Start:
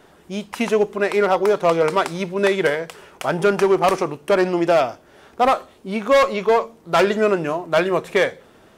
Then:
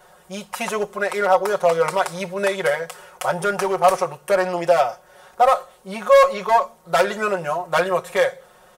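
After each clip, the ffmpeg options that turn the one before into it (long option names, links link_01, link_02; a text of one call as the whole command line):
ffmpeg -i in.wav -af "aecho=1:1:5.5:0.98,alimiter=limit=-5.5dB:level=0:latency=1:release=238,firequalizer=gain_entry='entry(110,0);entry(310,-14);entry(490,5);entry(1300,5);entry(2400,0);entry(9200,9)':delay=0.05:min_phase=1,volume=-5dB" out.wav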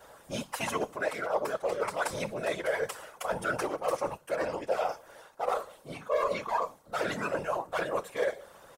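ffmpeg -i in.wav -af "aecho=1:1:3.6:0.36,areverse,acompressor=threshold=-25dB:ratio=5,areverse,afftfilt=real='hypot(re,im)*cos(2*PI*random(0))':imag='hypot(re,im)*sin(2*PI*random(1))':win_size=512:overlap=0.75,volume=2.5dB" out.wav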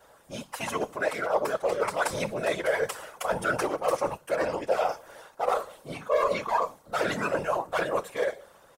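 ffmpeg -i in.wav -af "dynaudnorm=framelen=210:gausssize=7:maxgain=7.5dB,volume=-3.5dB" out.wav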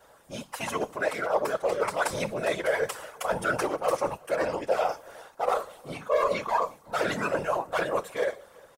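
ffmpeg -i in.wav -filter_complex "[0:a]asplit=2[link_01][link_02];[link_02]adelay=361.5,volume=-26dB,highshelf=frequency=4000:gain=-8.13[link_03];[link_01][link_03]amix=inputs=2:normalize=0" out.wav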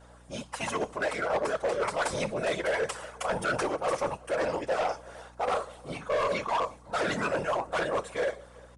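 ffmpeg -i in.wav -af "aeval=exprs='val(0)+0.002*(sin(2*PI*60*n/s)+sin(2*PI*2*60*n/s)/2+sin(2*PI*3*60*n/s)/3+sin(2*PI*4*60*n/s)/4+sin(2*PI*5*60*n/s)/5)':channel_layout=same,volume=23.5dB,asoftclip=hard,volume=-23.5dB,aresample=22050,aresample=44100" out.wav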